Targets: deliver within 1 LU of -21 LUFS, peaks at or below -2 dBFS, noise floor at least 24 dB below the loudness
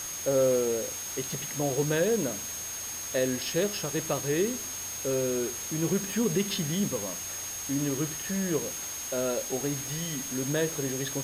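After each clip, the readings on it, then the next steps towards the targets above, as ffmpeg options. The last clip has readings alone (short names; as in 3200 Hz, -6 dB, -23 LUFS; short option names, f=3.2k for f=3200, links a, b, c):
steady tone 6500 Hz; tone level -36 dBFS; noise floor -37 dBFS; noise floor target -54 dBFS; loudness -29.5 LUFS; peak -15.0 dBFS; loudness target -21.0 LUFS
-> -af "bandreject=f=6.5k:w=30"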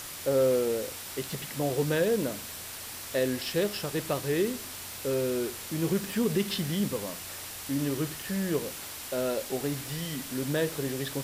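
steady tone none; noise floor -41 dBFS; noise floor target -55 dBFS
-> -af "afftdn=nr=14:nf=-41"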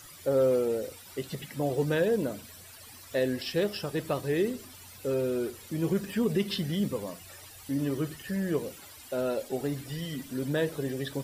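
noise floor -49 dBFS; noise floor target -55 dBFS
-> -af "afftdn=nr=6:nf=-49"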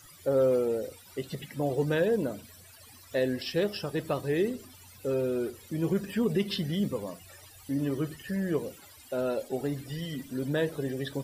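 noise floor -53 dBFS; noise floor target -55 dBFS
-> -af "afftdn=nr=6:nf=-53"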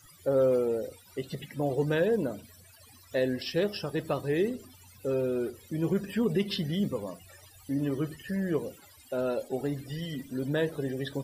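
noise floor -56 dBFS; loudness -31.0 LUFS; peak -16.5 dBFS; loudness target -21.0 LUFS
-> -af "volume=10dB"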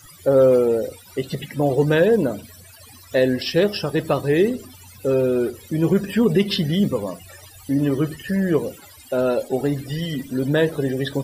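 loudness -21.0 LUFS; peak -6.5 dBFS; noise floor -46 dBFS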